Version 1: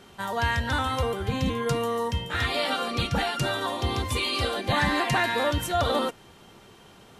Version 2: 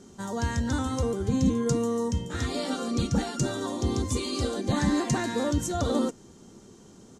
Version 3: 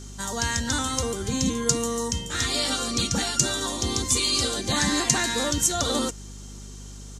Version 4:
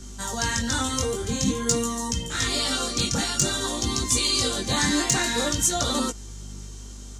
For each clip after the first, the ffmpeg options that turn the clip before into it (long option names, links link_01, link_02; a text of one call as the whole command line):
ffmpeg -i in.wav -af "firequalizer=gain_entry='entry(130,0);entry(230,7);entry(670,-7);entry(1200,-8);entry(2600,-14);entry(6600,8);entry(12000,-11)':delay=0.05:min_phase=1" out.wav
ffmpeg -i in.wav -af "tiltshelf=frequency=1300:gain=-8.5,aeval=exprs='val(0)+0.00562*(sin(2*PI*50*n/s)+sin(2*PI*2*50*n/s)/2+sin(2*PI*3*50*n/s)/3+sin(2*PI*4*50*n/s)/4+sin(2*PI*5*50*n/s)/5)':channel_layout=same,volume=5.5dB" out.wav
ffmpeg -i in.wav -filter_complex "[0:a]acrossover=split=140|4400[link_01][link_02][link_03];[link_03]volume=12dB,asoftclip=hard,volume=-12dB[link_04];[link_01][link_02][link_04]amix=inputs=3:normalize=0,flanger=delay=16:depth=7.6:speed=0.5,volume=3.5dB" out.wav